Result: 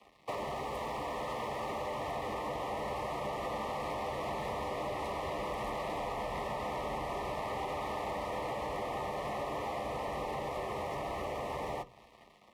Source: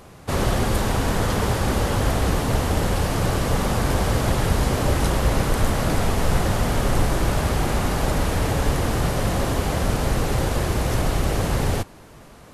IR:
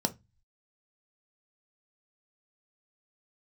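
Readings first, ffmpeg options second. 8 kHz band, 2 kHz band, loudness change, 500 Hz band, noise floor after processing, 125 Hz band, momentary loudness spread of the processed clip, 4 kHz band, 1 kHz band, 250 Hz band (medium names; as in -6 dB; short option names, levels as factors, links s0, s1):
-23.5 dB, -14.0 dB, -15.0 dB, -11.0 dB, -59 dBFS, -25.5 dB, 1 LU, -16.0 dB, -8.5 dB, -19.0 dB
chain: -filter_complex "[0:a]acrossover=split=410 2300:gain=0.1 1 0.126[s0][s1][s2];[s0][s1][s2]amix=inputs=3:normalize=0,asoftclip=type=hard:threshold=0.0398,dynaudnorm=f=460:g=11:m=5.01,aeval=exprs='sgn(val(0))*max(abs(val(0))-0.00376,0)':c=same,afreqshift=25,asuperstop=centerf=1500:order=12:qfactor=3,asplit=2[s3][s4];[1:a]atrim=start_sample=2205,adelay=10[s5];[s4][s5]afir=irnorm=-1:irlink=0,volume=0.168[s6];[s3][s6]amix=inputs=2:normalize=0,acompressor=threshold=0.02:ratio=16"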